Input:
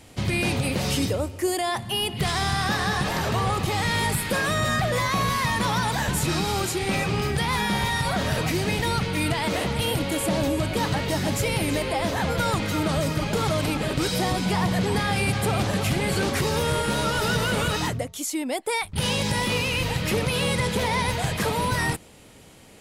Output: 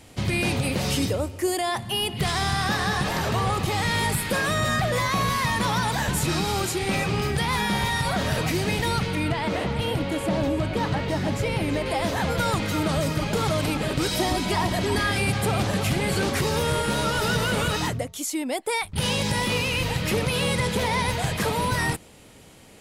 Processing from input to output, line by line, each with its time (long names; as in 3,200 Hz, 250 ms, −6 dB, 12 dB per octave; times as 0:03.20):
0:09.15–0:11.86: low-pass filter 2,600 Hz 6 dB per octave
0:14.11–0:15.18: comb filter 3.1 ms